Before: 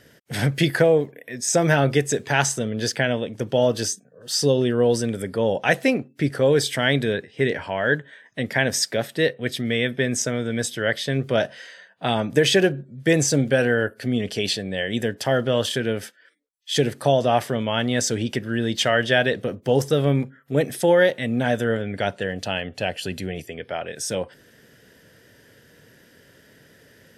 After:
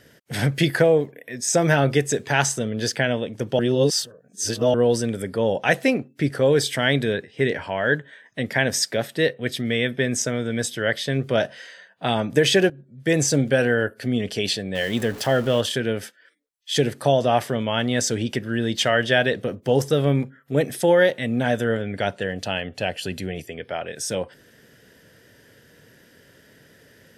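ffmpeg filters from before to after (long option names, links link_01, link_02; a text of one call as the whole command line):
ffmpeg -i in.wav -filter_complex "[0:a]asettb=1/sr,asplit=3[link_01][link_02][link_03];[link_01]atrim=end=14.754[link_04];[link_02]atrim=start=14.75:end=15.61,asetpts=PTS-STARTPTS,afade=type=in:duration=0.004:curve=qsin,afade=type=out:start_time=0.856:duration=0.004:curve=qsin,aeval=exprs='val(0)+0.5*0.0224*sgn(val(0))':channel_layout=same[link_05];[link_03]atrim=start=15.606[link_06];[link_04][link_05]acrossfade=duration=0.004:curve1=hsin:curve2=qsin[link_07];[link_07][link_06]acrossfade=duration=0.004:curve1=qsin:curve2=hsin,asplit=4[link_08][link_09][link_10][link_11];[link_08]atrim=end=3.592[link_12];[link_09]atrim=start=3.588:end=4.742,asetpts=PTS-STARTPTS,areverse[link_13];[link_10]atrim=start=4.738:end=12.7,asetpts=PTS-STARTPTS,afade=type=out:start_time=7.958:duration=0.004:curve=hsin:silence=0.149624[link_14];[link_11]atrim=start=12.7,asetpts=PTS-STARTPTS,afade=type=in:duration=0.54:silence=0.149624[link_15];[link_12][link_13]acrossfade=duration=0.004:curve1=hsin:curve2=hsin[link_16];[link_14][link_15]concat=n=2:v=0:a=1[link_17];[link_16][link_17]acrossfade=duration=0.004:curve1=hsin:curve2=hsin" out.wav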